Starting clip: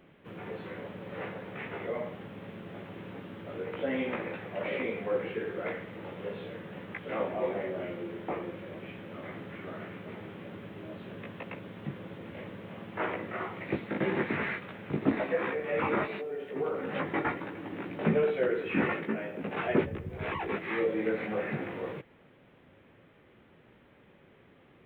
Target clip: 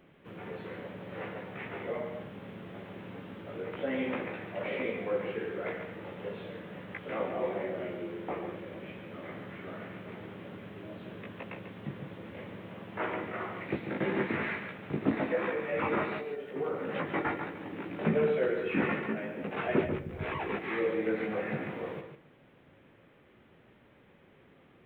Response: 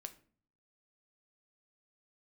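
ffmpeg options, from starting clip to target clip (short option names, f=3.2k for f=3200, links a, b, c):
-filter_complex "[0:a]asplit=2[a][b];[1:a]atrim=start_sample=2205,adelay=142[c];[b][c]afir=irnorm=-1:irlink=0,volume=-3dB[d];[a][d]amix=inputs=2:normalize=0,volume=-1.5dB"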